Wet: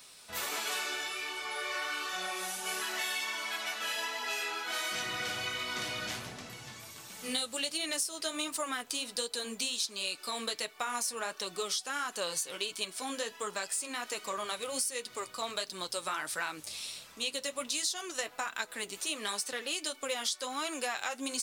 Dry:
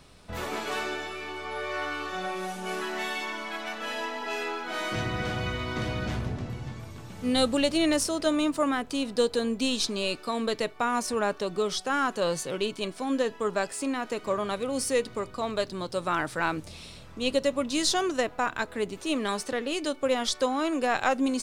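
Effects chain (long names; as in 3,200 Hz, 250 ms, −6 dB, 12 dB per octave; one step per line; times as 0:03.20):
spectral tilt +4.5 dB per octave
downward compressor 6 to 1, threshold −27 dBFS, peak gain reduction 15 dB
flanger 1.4 Hz, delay 3.8 ms, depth 6.5 ms, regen −40%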